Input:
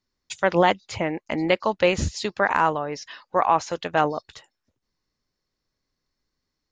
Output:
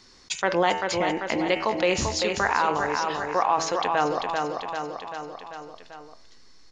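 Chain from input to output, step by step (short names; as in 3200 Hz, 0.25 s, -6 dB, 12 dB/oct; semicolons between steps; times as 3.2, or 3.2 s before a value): tone controls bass -7 dB, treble +7 dB; notch 600 Hz, Q 12; de-hum 81.49 Hz, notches 38; in parallel at -7.5 dB: backlash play -30 dBFS; on the sum: air absorption 63 m; on a send: feedback echo 0.391 s, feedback 40%, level -8 dB; on the sum: downsampling 22050 Hz; fast leveller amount 50%; gain -6.5 dB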